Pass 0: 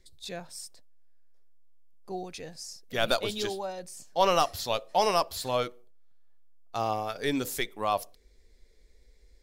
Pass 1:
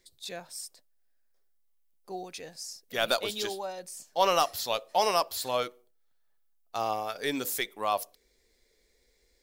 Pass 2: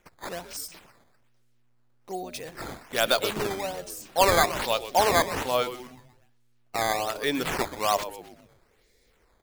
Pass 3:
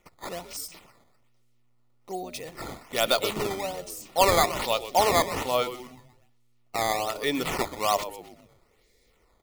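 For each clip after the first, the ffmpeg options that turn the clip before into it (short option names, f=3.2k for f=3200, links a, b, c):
-af "lowpass=f=3.4k:p=1,aemphasis=mode=production:type=bsi"
-filter_complex "[0:a]asplit=6[a][b][c][d][e][f];[b]adelay=125,afreqshift=-120,volume=-13dB[g];[c]adelay=250,afreqshift=-240,volume=-19.6dB[h];[d]adelay=375,afreqshift=-360,volume=-26.1dB[i];[e]adelay=500,afreqshift=-480,volume=-32.7dB[j];[f]adelay=625,afreqshift=-600,volume=-39.2dB[k];[a][g][h][i][j][k]amix=inputs=6:normalize=0,acrusher=samples=9:mix=1:aa=0.000001:lfo=1:lforange=14.4:lforate=1.2,volume=4dB"
-af "asuperstop=centerf=1600:order=4:qfactor=5.7"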